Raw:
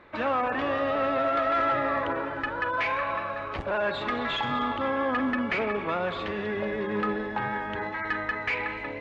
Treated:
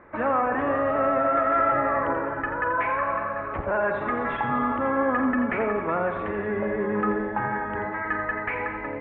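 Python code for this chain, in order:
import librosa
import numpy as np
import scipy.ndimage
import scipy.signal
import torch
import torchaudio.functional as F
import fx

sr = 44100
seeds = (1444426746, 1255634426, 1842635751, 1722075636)

p1 = scipy.signal.sosfilt(scipy.signal.butter(4, 1900.0, 'lowpass', fs=sr, output='sos'), x)
p2 = p1 + fx.echo_single(p1, sr, ms=85, db=-9.0, dry=0)
y = F.gain(torch.from_numpy(p2), 3.0).numpy()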